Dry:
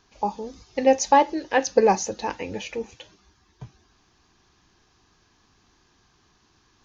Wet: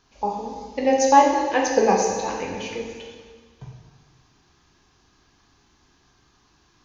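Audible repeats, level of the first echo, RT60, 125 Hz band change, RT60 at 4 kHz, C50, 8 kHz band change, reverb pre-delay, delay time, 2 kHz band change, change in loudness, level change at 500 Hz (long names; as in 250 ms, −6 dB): no echo audible, no echo audible, 1.5 s, +2.0 dB, 1.4 s, 2.5 dB, can't be measured, 4 ms, no echo audible, +1.5 dB, +2.0 dB, +1.0 dB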